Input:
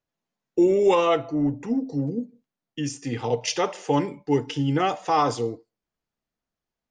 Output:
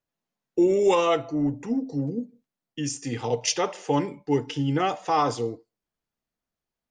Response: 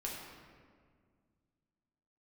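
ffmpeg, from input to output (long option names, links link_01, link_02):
-filter_complex "[0:a]asplit=3[link_01][link_02][link_03];[link_01]afade=type=out:start_time=0.69:duration=0.02[link_04];[link_02]adynamicequalizer=threshold=0.00355:dfrequency=7700:dqfactor=0.87:tfrequency=7700:tqfactor=0.87:attack=5:release=100:ratio=0.375:range=3.5:mode=boostabove:tftype=bell,afade=type=in:start_time=0.69:duration=0.02,afade=type=out:start_time=3.52:duration=0.02[link_05];[link_03]afade=type=in:start_time=3.52:duration=0.02[link_06];[link_04][link_05][link_06]amix=inputs=3:normalize=0,volume=-1.5dB"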